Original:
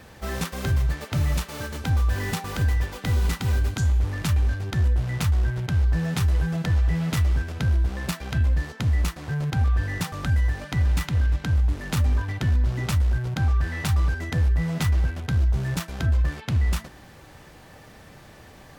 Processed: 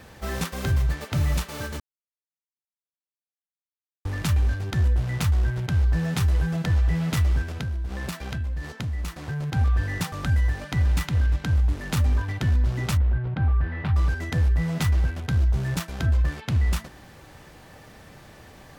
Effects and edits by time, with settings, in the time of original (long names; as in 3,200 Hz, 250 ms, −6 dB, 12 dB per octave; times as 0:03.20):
0:01.80–0:04.05: silence
0:07.56–0:09.54: downward compressor, threshold −26 dBFS
0:12.97–0:13.96: high-frequency loss of the air 440 metres